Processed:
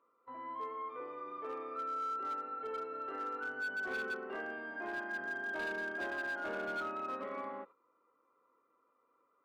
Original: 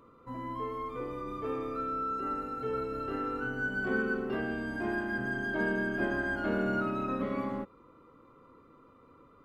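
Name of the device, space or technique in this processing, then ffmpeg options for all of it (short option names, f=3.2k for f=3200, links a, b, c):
walkie-talkie: -af "highpass=550,lowpass=2.3k,asoftclip=type=hard:threshold=-31.5dB,agate=range=-10dB:threshold=-52dB:ratio=16:detection=peak,volume=-2.5dB"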